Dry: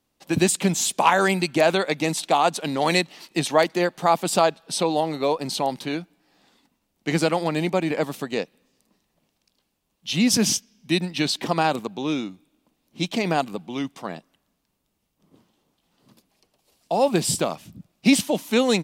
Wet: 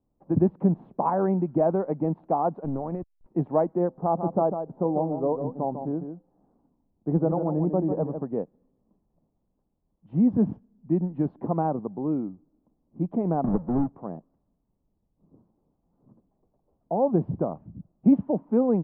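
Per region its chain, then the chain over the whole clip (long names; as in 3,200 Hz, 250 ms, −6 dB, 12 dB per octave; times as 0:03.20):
0:02.64–0:03.26: slack as between gear wheels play −26 dBFS + downward compressor, threshold −23 dBFS
0:03.88–0:08.22: low-pass filter 1,300 Hz + hum removal 258 Hz, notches 3 + single-tap delay 149 ms −8 dB
0:13.44–0:13.97: each half-wave held at its own peak + multiband upward and downward compressor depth 100%
whole clip: low-pass filter 1,000 Hz 24 dB per octave; spectral tilt −2.5 dB per octave; level −5.5 dB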